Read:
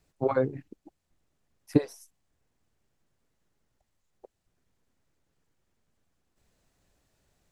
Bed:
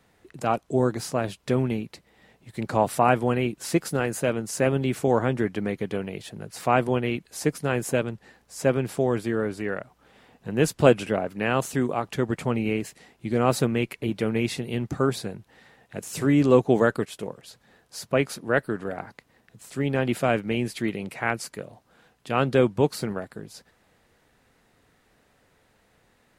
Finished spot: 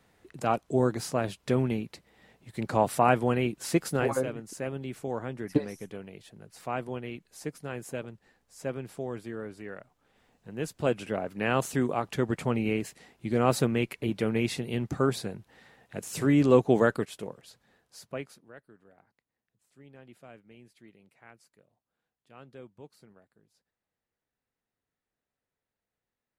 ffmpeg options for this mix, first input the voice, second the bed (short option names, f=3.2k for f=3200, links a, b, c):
-filter_complex "[0:a]adelay=3800,volume=-3.5dB[a];[1:a]volume=7dB,afade=t=out:st=3.99:d=0.26:silence=0.334965,afade=t=in:st=10.79:d=0.73:silence=0.334965,afade=t=out:st=16.84:d=1.69:silence=0.0562341[b];[a][b]amix=inputs=2:normalize=0"